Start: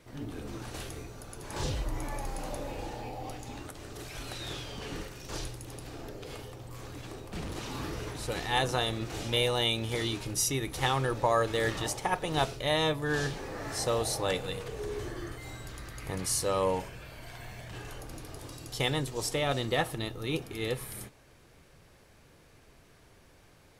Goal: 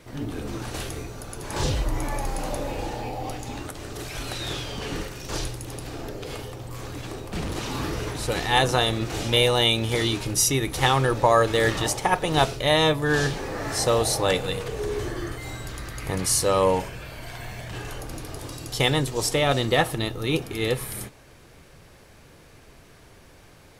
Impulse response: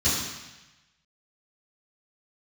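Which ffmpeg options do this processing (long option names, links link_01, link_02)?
-af "volume=8dB"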